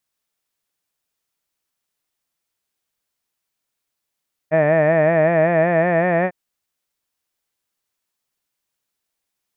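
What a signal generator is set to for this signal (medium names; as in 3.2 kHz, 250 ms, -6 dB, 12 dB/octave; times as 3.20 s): formant vowel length 1.80 s, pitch 153 Hz, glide +2.5 st, F1 630 Hz, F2 1.8 kHz, F3 2.4 kHz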